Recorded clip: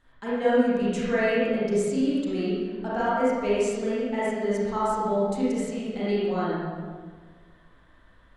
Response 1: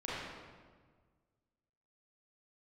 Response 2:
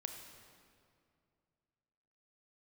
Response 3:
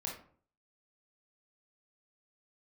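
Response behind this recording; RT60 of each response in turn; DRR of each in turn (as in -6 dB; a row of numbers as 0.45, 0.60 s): 1; 1.6, 2.4, 0.50 s; -9.0, 4.5, -2.0 dB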